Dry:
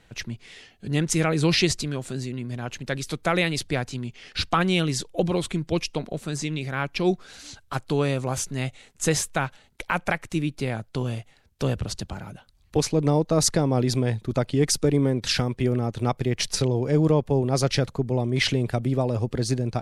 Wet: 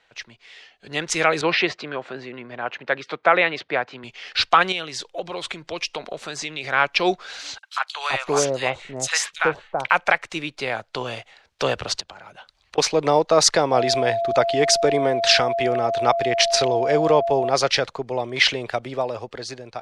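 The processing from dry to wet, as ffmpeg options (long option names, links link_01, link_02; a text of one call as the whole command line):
ffmpeg -i in.wav -filter_complex "[0:a]asettb=1/sr,asplit=3[link_01][link_02][link_03];[link_01]atrim=end=1.414[link_04];[link_02]atrim=start=1.41:end=4.04,asetpts=PTS-STARTPTS,afade=type=in:duration=0.004:curve=qsin,afade=type=out:start_time=2.626:duration=0.004:curve=qsin,highpass=150,lowpass=2100[link_05];[link_03]atrim=start=4.036[link_06];[link_04][link_05]acrossfade=duration=0.004:curve1=hsin:curve2=qsin[link_07];[link_07][link_06]acrossfade=duration=0.004:curve1=qsin:curve2=hsin,asettb=1/sr,asplit=3[link_08][link_09][link_10];[link_08]atrim=end=4.724[link_11];[link_09]atrim=start=4.72:end=6.64,asetpts=PTS-STARTPTS,afade=type=in:duration=0.004:curve=qsin,afade=type=out:start_time=1.916:duration=0.004:curve=qsin,acompressor=threshold=-31dB:ratio=2.5:attack=3.2:release=140:knee=1:detection=peak[link_12];[link_10]atrim=start=6.636[link_13];[link_11][link_12]acrossfade=duration=0.004:curve1=hsin:curve2=qsin[link_14];[link_14][link_13]acrossfade=duration=0.004:curve1=qsin:curve2=hsin,asettb=1/sr,asplit=3[link_15][link_16][link_17];[link_15]atrim=end=7.584[link_18];[link_16]atrim=start=7.58:end=9.91,asetpts=PTS-STARTPTS,afade=type=in:duration=0.004:curve=qsin,afade=type=out:start_time=2.326:duration=0.004:curve=qsin,acrossover=split=890|3400[link_19][link_20][link_21];[link_20]adelay=50[link_22];[link_19]adelay=380[link_23];[link_23][link_22][link_21]amix=inputs=3:normalize=0,atrim=end_sample=102753[link_24];[link_17]atrim=start=9.906[link_25];[link_18][link_24]acrossfade=duration=0.004:curve1=hsin:curve2=qsin[link_26];[link_26][link_25]acrossfade=duration=0.004:curve1=qsin:curve2=hsin,asettb=1/sr,asplit=3[link_27][link_28][link_29];[link_27]atrim=end=12.004[link_30];[link_28]atrim=start=12:end=12.78,asetpts=PTS-STARTPTS,afade=type=in:duration=0.004:curve=qsin,afade=type=out:start_time=0.776:duration=0.004:curve=qsin,acompressor=threshold=-42dB:ratio=16:attack=3.2:release=140:knee=1:detection=peak[link_31];[link_29]atrim=start=12.776[link_32];[link_30][link_31]acrossfade=duration=0.004:curve1=hsin:curve2=qsin[link_33];[link_33][link_32]acrossfade=duration=0.004:curve1=qsin:curve2=hsin,asettb=1/sr,asplit=3[link_34][link_35][link_36];[link_34]atrim=end=13.724[link_37];[link_35]atrim=start=13.72:end=17.5,asetpts=PTS-STARTPTS,afade=type=in:duration=0.004:curve=qsin,afade=type=out:start_time=3.776:duration=0.004:curve=qsin,aeval=exprs='val(0)+0.0355*sin(2*PI*680*n/s)':channel_layout=same[link_38];[link_36]atrim=start=17.496[link_39];[link_37][link_38]acrossfade=duration=0.004:curve1=hsin:curve2=qsin[link_40];[link_40][link_39]acrossfade=duration=0.004:curve1=qsin:curve2=hsin,lowpass=11000,acrossover=split=490 6000:gain=0.0891 1 0.158[link_41][link_42][link_43];[link_41][link_42][link_43]amix=inputs=3:normalize=0,dynaudnorm=framelen=180:gausssize=11:maxgain=12dB" out.wav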